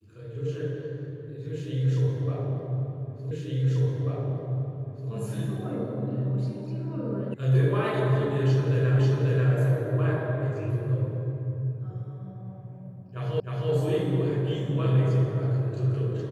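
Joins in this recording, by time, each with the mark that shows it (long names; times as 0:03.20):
0:03.31: the same again, the last 1.79 s
0:07.34: cut off before it has died away
0:08.99: the same again, the last 0.54 s
0:13.40: the same again, the last 0.31 s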